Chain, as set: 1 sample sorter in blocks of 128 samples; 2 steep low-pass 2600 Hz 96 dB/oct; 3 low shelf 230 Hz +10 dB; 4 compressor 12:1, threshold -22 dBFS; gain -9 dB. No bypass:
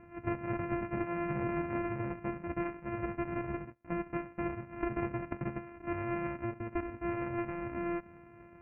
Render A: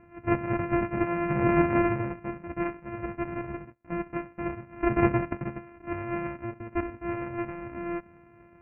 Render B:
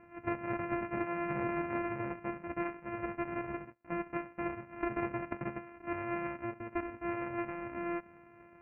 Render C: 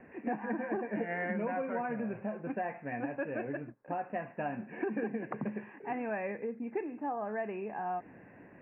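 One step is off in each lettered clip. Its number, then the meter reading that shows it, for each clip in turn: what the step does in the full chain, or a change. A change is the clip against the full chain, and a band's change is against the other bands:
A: 4, mean gain reduction 3.5 dB; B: 3, 125 Hz band -6.0 dB; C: 1, crest factor change -1.5 dB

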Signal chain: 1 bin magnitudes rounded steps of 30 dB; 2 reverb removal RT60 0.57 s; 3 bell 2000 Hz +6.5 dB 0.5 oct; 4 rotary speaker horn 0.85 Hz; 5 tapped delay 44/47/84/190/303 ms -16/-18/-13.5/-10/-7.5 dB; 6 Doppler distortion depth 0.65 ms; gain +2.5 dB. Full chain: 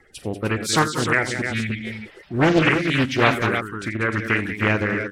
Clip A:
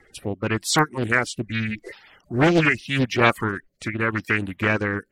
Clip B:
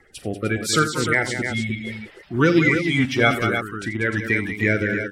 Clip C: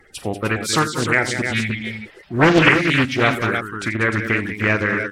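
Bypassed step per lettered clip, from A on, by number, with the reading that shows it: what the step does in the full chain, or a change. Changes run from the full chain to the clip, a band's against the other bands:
5, crest factor change +2.0 dB; 6, 1 kHz band -3.0 dB; 4, 2 kHz band +1.5 dB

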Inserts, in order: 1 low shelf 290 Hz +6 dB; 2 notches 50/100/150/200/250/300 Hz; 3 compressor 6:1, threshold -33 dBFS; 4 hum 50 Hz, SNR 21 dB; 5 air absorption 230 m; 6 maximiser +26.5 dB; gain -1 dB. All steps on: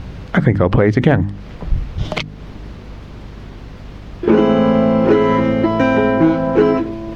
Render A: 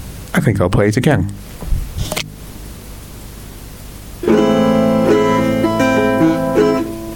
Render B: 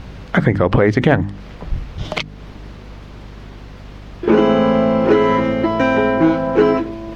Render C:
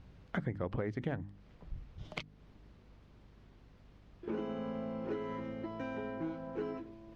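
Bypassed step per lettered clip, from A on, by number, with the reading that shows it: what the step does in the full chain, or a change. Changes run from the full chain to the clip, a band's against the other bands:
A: 5, 4 kHz band +4.0 dB; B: 1, 125 Hz band -3.5 dB; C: 6, crest factor change +9.5 dB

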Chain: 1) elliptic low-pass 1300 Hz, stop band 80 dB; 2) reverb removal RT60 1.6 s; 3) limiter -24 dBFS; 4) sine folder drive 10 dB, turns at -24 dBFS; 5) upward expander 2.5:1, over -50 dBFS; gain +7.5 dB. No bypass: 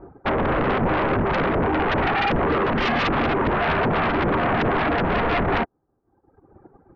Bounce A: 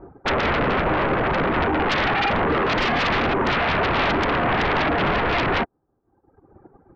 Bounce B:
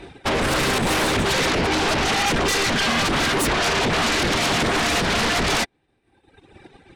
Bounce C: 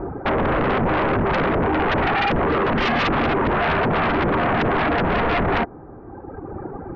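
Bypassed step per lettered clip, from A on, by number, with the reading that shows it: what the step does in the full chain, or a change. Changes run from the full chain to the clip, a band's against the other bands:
3, mean gain reduction 2.0 dB; 1, 4 kHz band +13.0 dB; 5, momentary loudness spread change +12 LU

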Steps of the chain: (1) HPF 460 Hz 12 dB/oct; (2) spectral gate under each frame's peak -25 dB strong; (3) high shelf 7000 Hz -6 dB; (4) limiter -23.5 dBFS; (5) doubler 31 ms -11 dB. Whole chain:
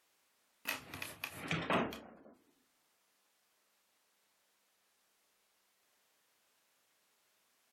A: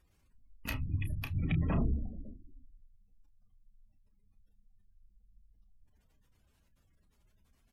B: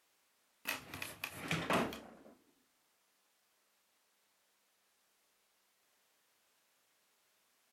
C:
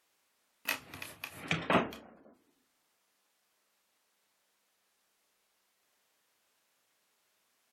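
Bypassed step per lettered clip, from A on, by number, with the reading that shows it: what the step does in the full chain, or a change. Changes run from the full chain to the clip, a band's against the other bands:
1, 125 Hz band +19.5 dB; 2, 8 kHz band +2.0 dB; 4, crest factor change +3.5 dB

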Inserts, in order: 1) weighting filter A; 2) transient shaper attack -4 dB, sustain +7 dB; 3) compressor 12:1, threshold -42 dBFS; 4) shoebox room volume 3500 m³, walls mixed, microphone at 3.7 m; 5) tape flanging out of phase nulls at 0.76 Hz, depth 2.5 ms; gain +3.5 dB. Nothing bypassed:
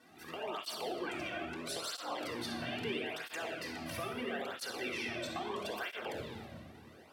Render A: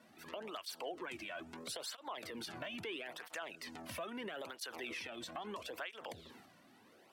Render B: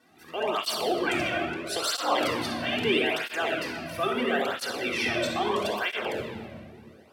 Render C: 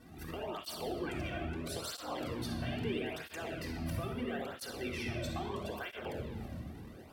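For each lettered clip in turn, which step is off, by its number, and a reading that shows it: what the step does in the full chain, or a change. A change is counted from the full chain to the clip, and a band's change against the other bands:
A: 4, momentary loudness spread change +1 LU; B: 3, mean gain reduction 8.5 dB; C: 1, 125 Hz band +11.5 dB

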